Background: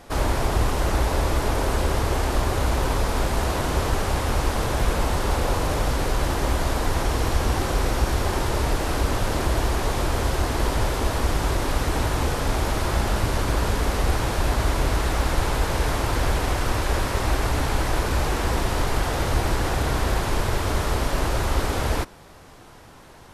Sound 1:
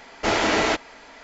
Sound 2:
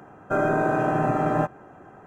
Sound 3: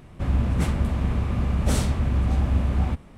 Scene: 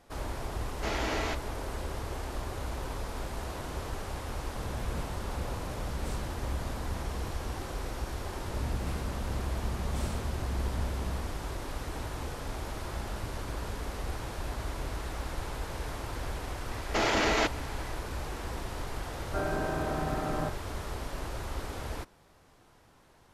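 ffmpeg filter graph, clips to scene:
-filter_complex "[1:a]asplit=2[s0][s1];[3:a]asplit=2[s2][s3];[0:a]volume=0.2[s4];[s3]aecho=1:1:90:0.708[s5];[s1]alimiter=limit=0.168:level=0:latency=1:release=27[s6];[2:a]asplit=2[s7][s8];[s8]adelay=45,volume=0.237[s9];[s7][s9]amix=inputs=2:normalize=0[s10];[s0]atrim=end=1.23,asetpts=PTS-STARTPTS,volume=0.237,afade=t=in:d=0.004:c=hsin,afade=t=out:st=1.226:d=0.004:c=hsin,adelay=590[s11];[s2]atrim=end=3.17,asetpts=PTS-STARTPTS,volume=0.141,afade=t=in:d=0.004:c=hsin,afade=t=out:st=3.166:d=0.004:c=hsin,adelay=4360[s12];[s5]atrim=end=3.17,asetpts=PTS-STARTPTS,volume=0.168,afade=t=in:d=0.004:c=hsin,afade=t=out:st=3.166:d=0.004:c=hsin,adelay=364266S[s13];[s6]atrim=end=1.23,asetpts=PTS-STARTPTS,volume=0.75,afade=t=in:d=0.004:c=hsin,afade=t=out:st=1.226:d=0.004:c=hsin,adelay=16710[s14];[s10]atrim=end=2.06,asetpts=PTS-STARTPTS,volume=0.299,afade=t=in:d=0.004:c=hsin,afade=t=out:st=2.056:d=0.004:c=hsin,adelay=19030[s15];[s4][s11][s12][s13][s14][s15]amix=inputs=6:normalize=0"

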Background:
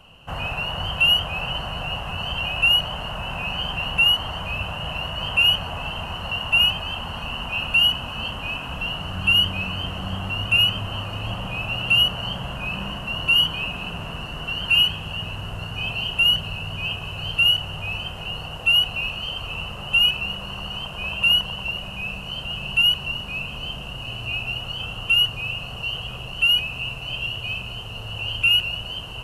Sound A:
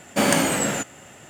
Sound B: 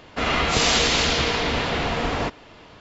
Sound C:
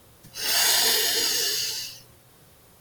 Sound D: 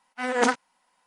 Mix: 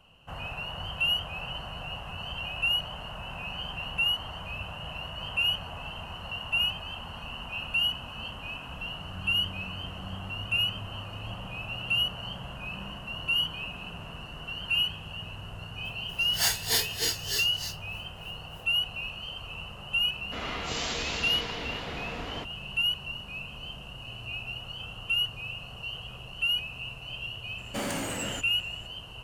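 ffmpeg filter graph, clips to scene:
-filter_complex "[0:a]volume=0.335[s0];[3:a]aeval=exprs='val(0)*pow(10,-20*(0.5-0.5*cos(2*PI*3.3*n/s))/20)':c=same[s1];[1:a]asoftclip=type=tanh:threshold=0.141[s2];[s1]atrim=end=2.8,asetpts=PTS-STARTPTS,volume=0.794,afade=t=in:d=0.004:c=hsin,afade=t=out:st=2.796:d=0.004:c=hsin,adelay=15850[s3];[2:a]atrim=end=2.8,asetpts=PTS-STARTPTS,volume=0.211,afade=t=in:d=0.004:c=hsin,afade=t=out:st=2.796:d=0.004:c=hsin,adelay=20150[s4];[s2]atrim=end=1.29,asetpts=PTS-STARTPTS,volume=0.316,afade=t=in:d=0.004:c=hsin,afade=t=out:st=1.286:d=0.004:c=hsin,adelay=27580[s5];[s0][s3][s4][s5]amix=inputs=4:normalize=0"

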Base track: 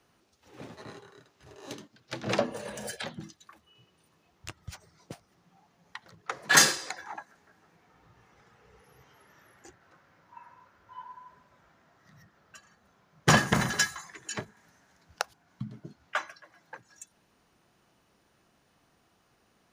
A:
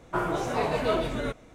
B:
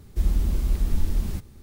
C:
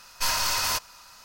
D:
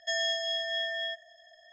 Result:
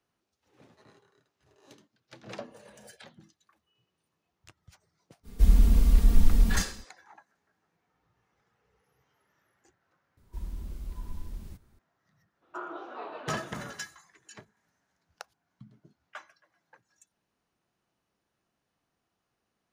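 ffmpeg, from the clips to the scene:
-filter_complex "[2:a]asplit=2[s0][s1];[0:a]volume=0.211[s2];[s0]aecho=1:1:4.3:0.72[s3];[1:a]highpass=f=310:w=0.5412,highpass=f=310:w=1.3066,equalizer=f=330:t=q:w=4:g=4,equalizer=f=480:t=q:w=4:g=-6,equalizer=f=1300:t=q:w=4:g=8,equalizer=f=2100:t=q:w=4:g=-10,lowpass=f=3600:w=0.5412,lowpass=f=3600:w=1.3066[s4];[s3]atrim=end=1.62,asetpts=PTS-STARTPTS,afade=t=in:d=0.05,afade=t=out:st=1.57:d=0.05,adelay=5230[s5];[s1]atrim=end=1.62,asetpts=PTS-STARTPTS,volume=0.168,afade=t=in:d=0.004:c=hsin,afade=t=out:st=1.616:d=0.004:c=hsin,adelay=10170[s6];[s4]atrim=end=1.54,asetpts=PTS-STARTPTS,volume=0.237,afade=t=in:d=0.02,afade=t=out:st=1.52:d=0.02,adelay=12410[s7];[s2][s5][s6][s7]amix=inputs=4:normalize=0"

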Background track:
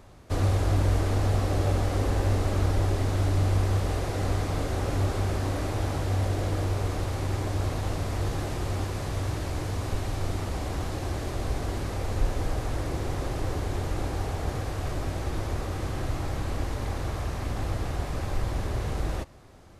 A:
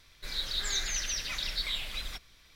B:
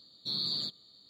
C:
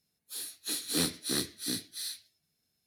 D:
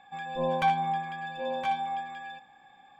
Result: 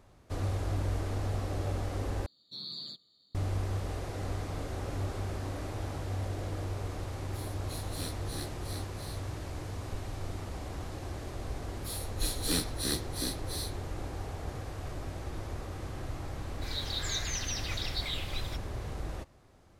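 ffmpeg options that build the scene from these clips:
-filter_complex "[3:a]asplit=2[s0][s1];[0:a]volume=0.376,asplit=2[s2][s3];[s2]atrim=end=2.264[s4];[2:a]atrim=end=1.09,asetpts=PTS-STARTPTS,volume=0.376[s5];[s3]atrim=start=3.346[s6];[s0]atrim=end=2.86,asetpts=PTS-STARTPTS,volume=0.266,afade=t=in:d=0.004:c=hsin,afade=t=out:st=2.856:d=0.004:c=hsin,adelay=7030[s7];[s1]atrim=end=2.86,asetpts=PTS-STARTPTS,volume=0.841,afade=t=in:d=0.004:c=hsin,afade=t=out:st=2.856:d=0.004:c=hsin,adelay=508914S[s8];[1:a]atrim=end=2.55,asetpts=PTS-STARTPTS,volume=0.708,afade=t=in:d=0.004:c=hsin,afade=t=out:st=2.546:d=0.004:c=hsin,adelay=16390[s9];[s4][s5]acrossfade=d=0.004:c1=hsin:c2=hsin[s10];[s10][s6]acrossfade=d=0.004:c1=hsin:c2=hsin[s11];[s11][s7][s8][s9]amix=inputs=4:normalize=0"

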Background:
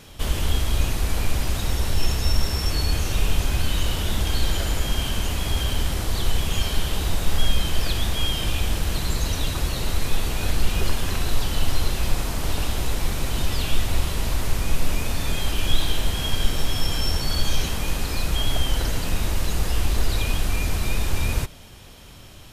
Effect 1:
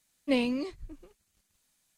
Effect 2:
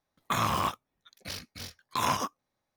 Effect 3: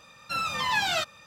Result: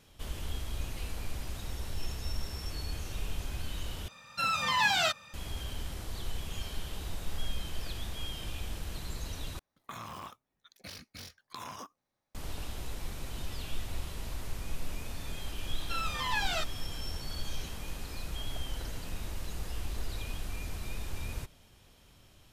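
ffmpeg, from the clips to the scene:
-filter_complex "[3:a]asplit=2[s0][s1];[0:a]volume=0.178[s2];[1:a]aderivative[s3];[s0]equalizer=f=390:w=2.2:g=-6[s4];[2:a]acompressor=threshold=0.0126:ratio=6:attack=3.2:release=140:knee=1:detection=peak[s5];[s2]asplit=3[s6][s7][s8];[s6]atrim=end=4.084[s9];[s4]atrim=end=1.26,asetpts=PTS-STARTPTS,volume=0.944[s10];[s7]atrim=start=5.336:end=9.594[s11];[s5]atrim=end=2.76,asetpts=PTS-STARTPTS,volume=0.75[s12];[s8]atrim=start=12.346[s13];[s3]atrim=end=1.97,asetpts=PTS-STARTPTS,volume=0.398,afade=t=in:d=0.004:c=hsin,afade=t=out:st=1.966:d=0.004:c=hsin,adelay=650[s14];[s1]atrim=end=1.26,asetpts=PTS-STARTPTS,volume=0.473,afade=t=in:d=0.004:c=hsin,afade=t=out:st=1.256:d=0.004:c=hsin,adelay=15600[s15];[s9][s10]acrossfade=d=0.004:c1=hsin:c2=hsin[s16];[s16][s11]acrossfade=d=0.004:c1=hsin:c2=hsin[s17];[s17][s12]acrossfade=d=0.004:c1=hsin:c2=hsin[s18];[s18][s13]acrossfade=d=0.004:c1=hsin:c2=hsin[s19];[s19][s14][s15]amix=inputs=3:normalize=0"

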